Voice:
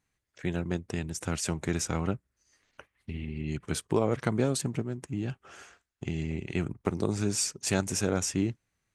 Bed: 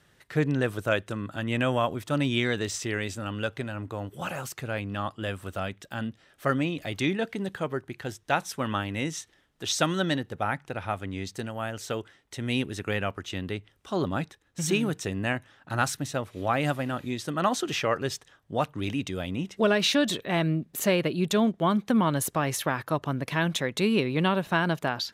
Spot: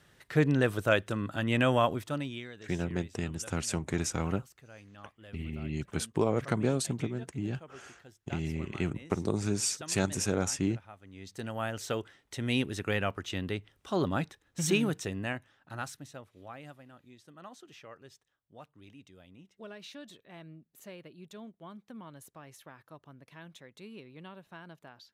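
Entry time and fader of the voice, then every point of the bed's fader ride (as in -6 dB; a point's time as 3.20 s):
2.25 s, -1.5 dB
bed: 1.93 s 0 dB
2.53 s -20 dB
11.01 s -20 dB
11.51 s -1.5 dB
14.82 s -1.5 dB
16.84 s -23.5 dB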